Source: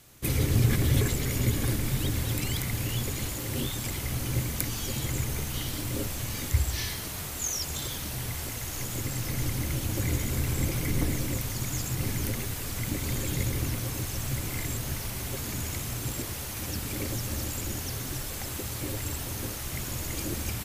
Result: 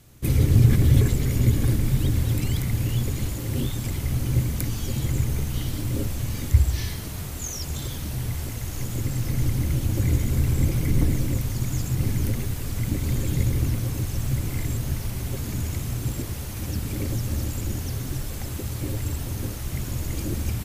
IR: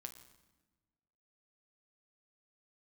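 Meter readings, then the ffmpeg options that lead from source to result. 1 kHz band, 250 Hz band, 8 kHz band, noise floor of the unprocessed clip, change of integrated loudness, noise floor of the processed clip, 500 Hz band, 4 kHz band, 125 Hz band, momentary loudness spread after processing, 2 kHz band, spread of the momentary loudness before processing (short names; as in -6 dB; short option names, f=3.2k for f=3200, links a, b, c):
-1.0 dB, +5.0 dB, -2.5 dB, -36 dBFS, +4.5 dB, -33 dBFS, +2.0 dB, -2.5 dB, +7.5 dB, 9 LU, -2.0 dB, 6 LU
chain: -af "lowshelf=f=350:g=11,volume=-2.5dB"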